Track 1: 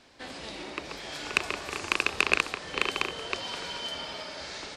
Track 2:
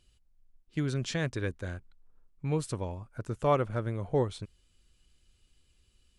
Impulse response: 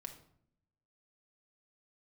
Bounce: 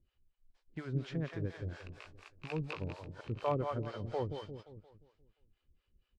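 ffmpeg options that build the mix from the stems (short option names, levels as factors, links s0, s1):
-filter_complex "[0:a]acrossover=split=5600[s0][s1];[s1]acompressor=threshold=0.00251:ratio=4:attack=1:release=60[s2];[s0][s2]amix=inputs=2:normalize=0,flanger=delay=17:depth=3.2:speed=0.49,adelay=500,volume=0.178[s3];[1:a]lowpass=2000,volume=0.794,asplit=3[s4][s5][s6];[s5]volume=0.398[s7];[s6]apad=whole_len=232084[s8];[s3][s8]sidechaingate=range=0.0447:threshold=0.00112:ratio=16:detection=peak[s9];[s7]aecho=0:1:175|350|525|700|875|1050|1225:1|0.47|0.221|0.104|0.0488|0.0229|0.0108[s10];[s9][s4][s10]amix=inputs=3:normalize=0,acrossover=split=470[s11][s12];[s11]aeval=exprs='val(0)*(1-1/2+1/2*cos(2*PI*4.2*n/s))':c=same[s13];[s12]aeval=exprs='val(0)*(1-1/2-1/2*cos(2*PI*4.2*n/s))':c=same[s14];[s13][s14]amix=inputs=2:normalize=0"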